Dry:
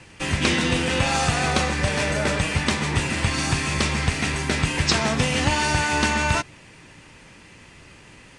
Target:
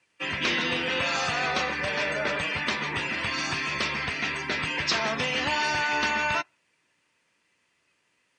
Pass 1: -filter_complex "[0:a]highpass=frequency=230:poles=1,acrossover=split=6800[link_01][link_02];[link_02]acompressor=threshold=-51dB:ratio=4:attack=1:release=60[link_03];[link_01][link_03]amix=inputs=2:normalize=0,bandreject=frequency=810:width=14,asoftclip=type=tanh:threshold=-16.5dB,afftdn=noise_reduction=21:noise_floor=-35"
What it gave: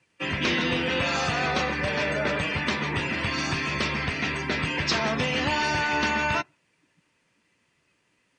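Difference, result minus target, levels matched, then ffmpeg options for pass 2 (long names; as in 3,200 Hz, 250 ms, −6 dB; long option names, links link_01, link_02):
250 Hz band +5.0 dB
-filter_complex "[0:a]highpass=frequency=630:poles=1,acrossover=split=6800[link_01][link_02];[link_02]acompressor=threshold=-51dB:ratio=4:attack=1:release=60[link_03];[link_01][link_03]amix=inputs=2:normalize=0,bandreject=frequency=810:width=14,asoftclip=type=tanh:threshold=-16.5dB,afftdn=noise_reduction=21:noise_floor=-35"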